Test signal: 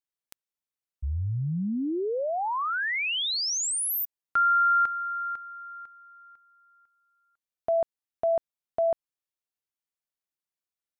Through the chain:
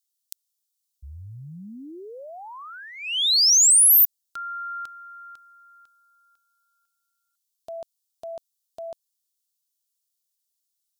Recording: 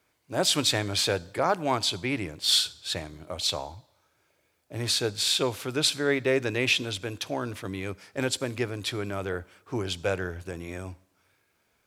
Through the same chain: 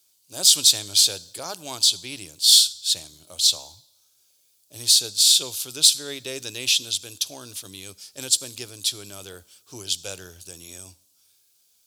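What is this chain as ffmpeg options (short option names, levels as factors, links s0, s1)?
-af "aexciter=amount=9.2:drive=7.9:freq=3100,volume=0.282"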